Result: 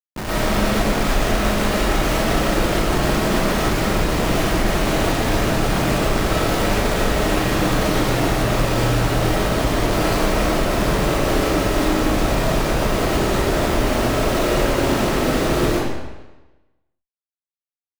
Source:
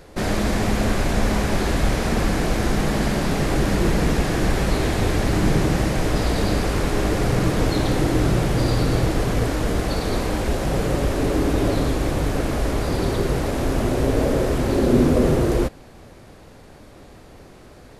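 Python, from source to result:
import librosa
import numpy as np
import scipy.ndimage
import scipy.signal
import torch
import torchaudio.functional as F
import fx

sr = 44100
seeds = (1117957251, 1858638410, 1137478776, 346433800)

y = fx.high_shelf(x, sr, hz=8400.0, db=4.0)
y = fx.schmitt(y, sr, flips_db=-29.5)
y = fx.rev_freeverb(y, sr, rt60_s=1.1, hf_ratio=0.9, predelay_ms=70, drr_db=-9.0)
y = y * librosa.db_to_amplitude(-7.0)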